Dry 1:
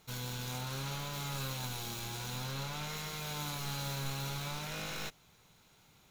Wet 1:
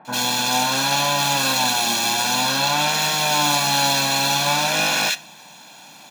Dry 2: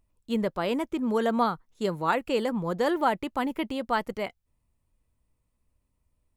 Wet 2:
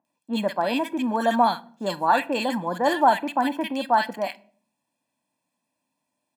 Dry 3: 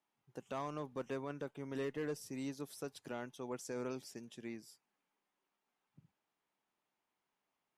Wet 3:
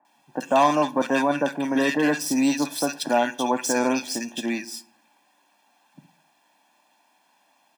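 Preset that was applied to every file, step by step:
median filter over 3 samples; HPF 240 Hz 24 dB/oct; comb 1.2 ms, depth 79%; bands offset in time lows, highs 50 ms, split 1500 Hz; shoebox room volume 590 m³, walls furnished, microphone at 0.37 m; normalise peaks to -6 dBFS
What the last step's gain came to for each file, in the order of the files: +21.5, +5.0, +23.0 dB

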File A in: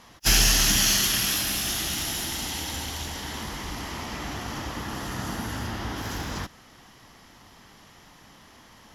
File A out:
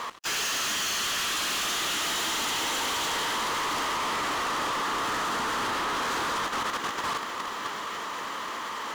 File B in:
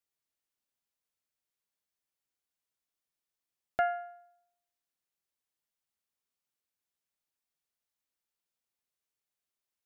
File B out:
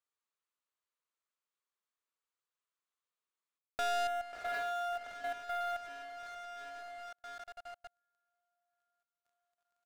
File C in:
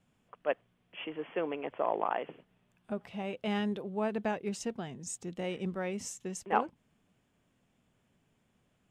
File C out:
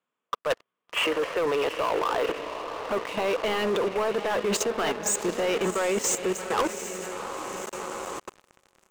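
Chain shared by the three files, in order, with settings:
bell 1000 Hz +5.5 dB 0.92 oct; reverse; compressor 6:1, threshold -36 dBFS; reverse; speaker cabinet 410–8000 Hz, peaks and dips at 450 Hz +4 dB, 770 Hz -7 dB, 1200 Hz +5 dB, 5400 Hz -9 dB; on a send: diffused feedback echo 0.733 s, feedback 56%, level -10.5 dB; on the sum: level quantiser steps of 12 dB; sample leveller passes 5; gain +8 dB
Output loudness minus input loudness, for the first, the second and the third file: -2.5, -5.0, +8.0 LU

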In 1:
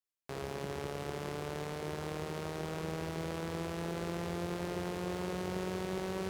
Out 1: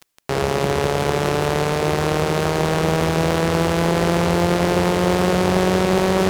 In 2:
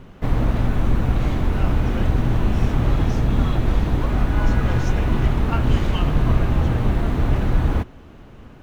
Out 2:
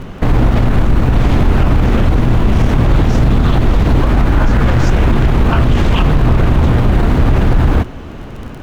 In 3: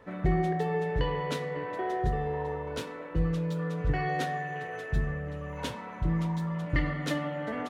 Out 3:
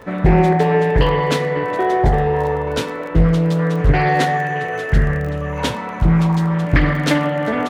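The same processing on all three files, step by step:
crackle 18/s -40 dBFS; maximiser +16.5 dB; Doppler distortion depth 0.46 ms; normalise peaks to -3 dBFS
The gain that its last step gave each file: +3.5, -2.0, -2.0 dB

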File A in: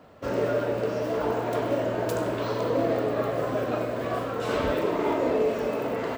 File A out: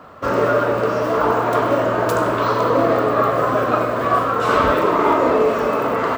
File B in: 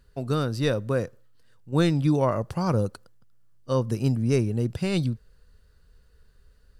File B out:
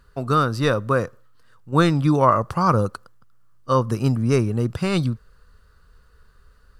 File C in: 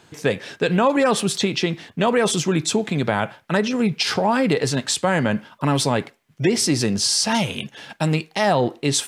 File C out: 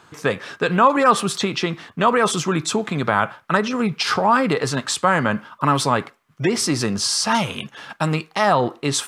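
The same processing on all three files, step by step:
bell 1200 Hz +12.5 dB 0.69 oct; normalise peaks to -3 dBFS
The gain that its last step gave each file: +7.0, +3.5, -1.5 dB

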